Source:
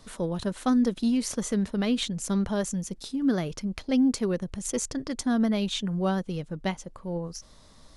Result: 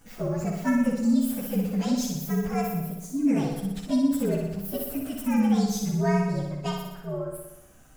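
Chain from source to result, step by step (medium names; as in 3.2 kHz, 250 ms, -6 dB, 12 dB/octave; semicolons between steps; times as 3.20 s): frequency axis rescaled in octaves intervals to 120%; flutter echo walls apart 10.4 m, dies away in 0.93 s; trim +1 dB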